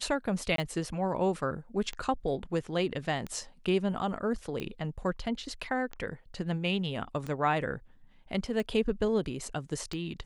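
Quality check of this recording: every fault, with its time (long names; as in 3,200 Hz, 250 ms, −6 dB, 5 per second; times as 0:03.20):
scratch tick 45 rpm
0:00.56–0:00.58: drop-out 23 ms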